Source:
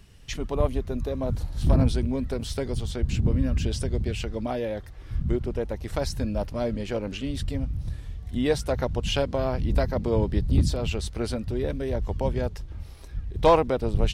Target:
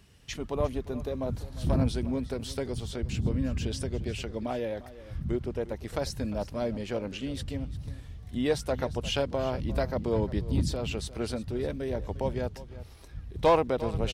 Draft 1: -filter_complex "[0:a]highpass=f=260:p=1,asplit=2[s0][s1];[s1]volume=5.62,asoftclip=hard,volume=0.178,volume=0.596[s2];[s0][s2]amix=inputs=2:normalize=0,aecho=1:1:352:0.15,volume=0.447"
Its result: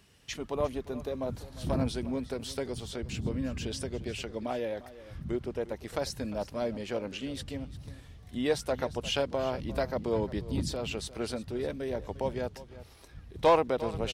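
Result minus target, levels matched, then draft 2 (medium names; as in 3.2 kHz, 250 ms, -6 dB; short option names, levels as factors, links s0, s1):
125 Hz band -4.0 dB
-filter_complex "[0:a]highpass=f=88:p=1,asplit=2[s0][s1];[s1]volume=5.62,asoftclip=hard,volume=0.178,volume=0.596[s2];[s0][s2]amix=inputs=2:normalize=0,aecho=1:1:352:0.15,volume=0.447"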